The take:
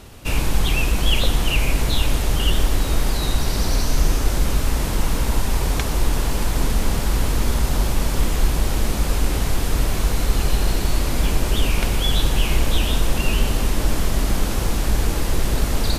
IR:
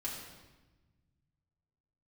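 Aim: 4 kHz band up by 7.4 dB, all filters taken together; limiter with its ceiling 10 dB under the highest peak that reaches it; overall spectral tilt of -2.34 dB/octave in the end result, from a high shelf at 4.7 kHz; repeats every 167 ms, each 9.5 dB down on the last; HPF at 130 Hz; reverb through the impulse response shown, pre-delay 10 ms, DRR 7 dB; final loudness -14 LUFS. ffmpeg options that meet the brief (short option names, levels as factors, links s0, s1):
-filter_complex "[0:a]highpass=130,equalizer=f=4000:t=o:g=5.5,highshelf=f=4700:g=8.5,alimiter=limit=0.188:level=0:latency=1,aecho=1:1:167|334|501|668:0.335|0.111|0.0365|0.012,asplit=2[s0][s1];[1:a]atrim=start_sample=2205,adelay=10[s2];[s1][s2]afir=irnorm=-1:irlink=0,volume=0.398[s3];[s0][s3]amix=inputs=2:normalize=0,volume=2.24"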